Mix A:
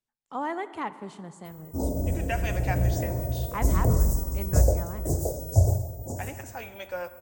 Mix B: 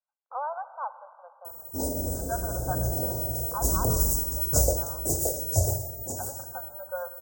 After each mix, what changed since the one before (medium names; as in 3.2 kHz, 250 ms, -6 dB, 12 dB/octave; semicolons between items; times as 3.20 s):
speech: add brick-wall FIR band-pass 490–1600 Hz; background: add tone controls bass -6 dB, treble +10 dB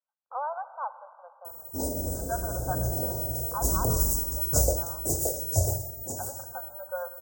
background: send -7.5 dB